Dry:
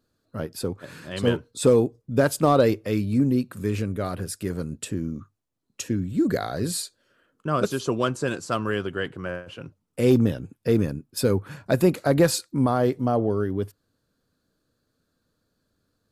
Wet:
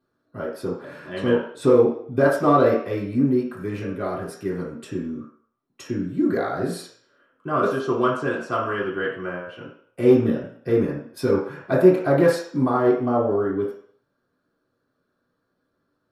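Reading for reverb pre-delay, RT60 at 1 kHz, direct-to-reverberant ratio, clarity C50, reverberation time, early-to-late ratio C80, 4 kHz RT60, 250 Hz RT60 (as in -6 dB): 3 ms, 0.60 s, -7.5 dB, 4.0 dB, 0.55 s, 8.0 dB, 0.60 s, 0.45 s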